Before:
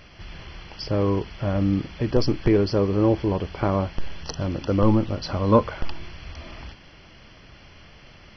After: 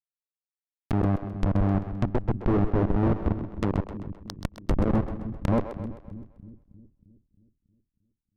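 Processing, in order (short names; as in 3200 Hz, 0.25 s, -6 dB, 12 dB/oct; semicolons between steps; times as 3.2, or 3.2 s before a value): Schmitt trigger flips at -17 dBFS; treble ducked by the level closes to 1000 Hz, closed at -27.5 dBFS; split-band echo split 310 Hz, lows 0.315 s, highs 0.13 s, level -10 dB; gain +3.5 dB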